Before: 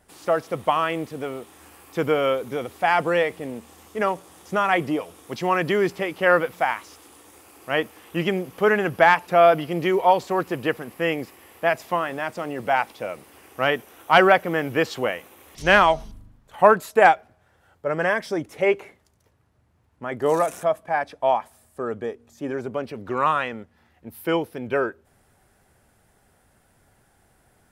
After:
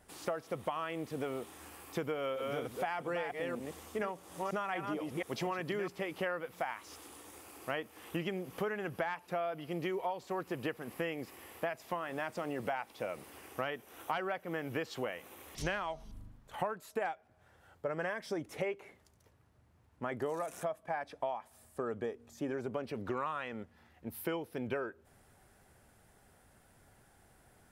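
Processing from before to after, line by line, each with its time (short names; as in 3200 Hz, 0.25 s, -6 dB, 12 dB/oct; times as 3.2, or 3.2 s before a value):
2.12–5.88 reverse delay 0.239 s, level -6 dB
whole clip: compressor 12:1, threshold -30 dBFS; gain -3 dB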